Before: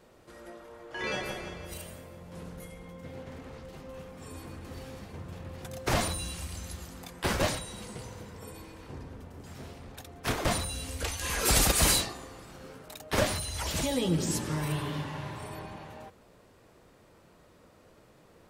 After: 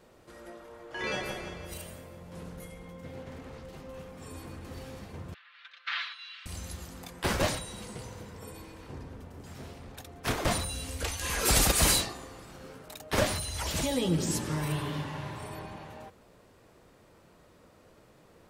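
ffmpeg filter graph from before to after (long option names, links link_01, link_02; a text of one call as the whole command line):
ffmpeg -i in.wav -filter_complex "[0:a]asettb=1/sr,asplit=3[link_01][link_02][link_03];[link_01]atrim=end=5.344[link_04];[link_02]atrim=start=5.34:end=6.46,asetpts=PTS-STARTPTS,afade=type=in:duration=0.004:curve=qsin,afade=type=out:start_time=1.116:duration=0.004:curve=qsin,asuperpass=centerf=2300:order=8:qfactor=0.84,aecho=1:1:5.9:0.73,atrim=end_sample=49392[link_05];[link_03]atrim=start=6.456[link_06];[link_04][link_05]acrossfade=duration=0.004:curve1=hsin:curve2=qsin[link_07];[link_07][link_06]acrossfade=duration=0.004:curve1=qsin:curve2=hsin" out.wav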